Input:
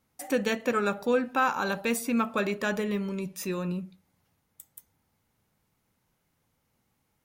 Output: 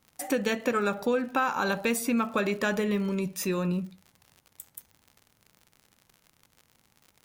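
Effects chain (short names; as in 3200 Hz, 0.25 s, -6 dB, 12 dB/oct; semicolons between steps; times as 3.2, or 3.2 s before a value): compressor 4:1, threshold -27 dBFS, peak gain reduction 6.5 dB; crackle 84/s -45 dBFS; gain +4 dB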